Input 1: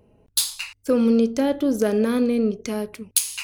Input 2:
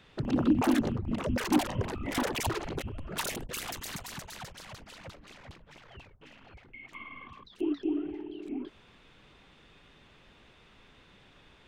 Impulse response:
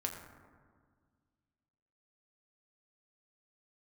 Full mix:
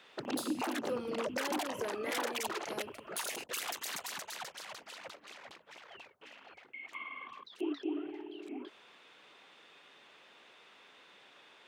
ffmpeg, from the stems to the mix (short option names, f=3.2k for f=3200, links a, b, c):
-filter_complex "[0:a]flanger=delay=2.9:depth=8.7:regen=-66:speed=0.74:shape=triangular,acrusher=bits=11:mix=0:aa=0.000001,volume=-9dB[a];[1:a]volume=1.5dB[b];[a][b]amix=inputs=2:normalize=0,highpass=460,alimiter=level_in=0.5dB:limit=-24dB:level=0:latency=1:release=256,volume=-0.5dB"